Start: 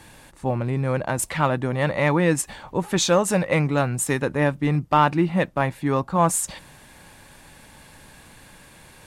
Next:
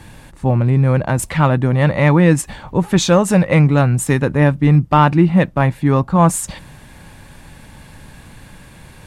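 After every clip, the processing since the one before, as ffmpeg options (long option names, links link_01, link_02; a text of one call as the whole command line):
ffmpeg -i in.wav -af "bass=frequency=250:gain=8,treble=frequency=4000:gain=-3,volume=4.5dB" out.wav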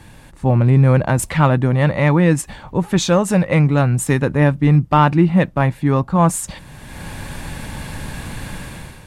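ffmpeg -i in.wav -af "dynaudnorm=framelen=190:gausssize=5:maxgain=13.5dB,volume=-3dB" out.wav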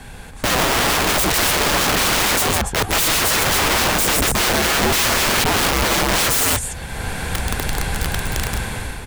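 ffmpeg -i in.wav -af "aecho=1:1:142.9|277:0.355|0.316,aeval=exprs='(mod(8.91*val(0)+1,2)-1)/8.91':channel_layout=same,afreqshift=-75,volume=6.5dB" out.wav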